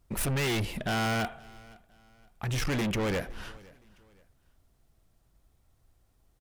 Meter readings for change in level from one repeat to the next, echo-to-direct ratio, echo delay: -9.5 dB, -23.0 dB, 0.515 s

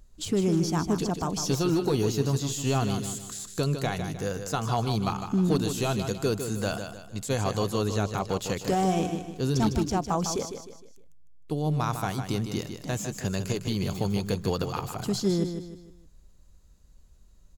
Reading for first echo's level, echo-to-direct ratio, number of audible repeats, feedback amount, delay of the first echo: -8.0 dB, -7.5 dB, 4, 39%, 0.154 s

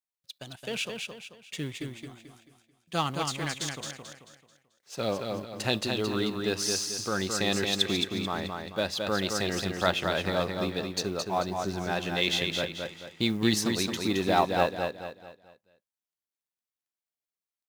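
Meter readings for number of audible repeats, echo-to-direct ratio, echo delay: 4, -4.0 dB, 0.219 s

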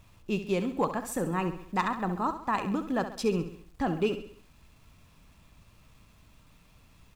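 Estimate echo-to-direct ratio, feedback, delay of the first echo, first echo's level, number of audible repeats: -9.5 dB, 48%, 67 ms, -10.5 dB, 4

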